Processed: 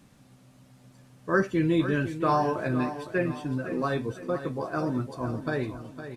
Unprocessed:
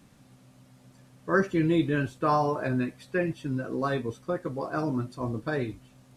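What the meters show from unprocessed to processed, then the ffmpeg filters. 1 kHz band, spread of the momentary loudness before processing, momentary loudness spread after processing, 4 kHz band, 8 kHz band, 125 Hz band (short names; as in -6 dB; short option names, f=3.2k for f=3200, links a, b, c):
+0.5 dB, 8 LU, 7 LU, +0.5 dB, n/a, +0.5 dB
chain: -af "aecho=1:1:509|1018|1527|2036:0.282|0.116|0.0474|0.0194"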